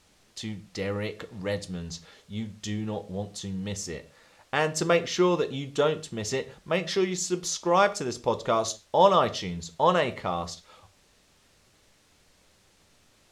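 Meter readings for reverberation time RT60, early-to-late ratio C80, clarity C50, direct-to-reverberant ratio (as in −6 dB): non-exponential decay, 22.0 dB, 18.0 dB, 12.0 dB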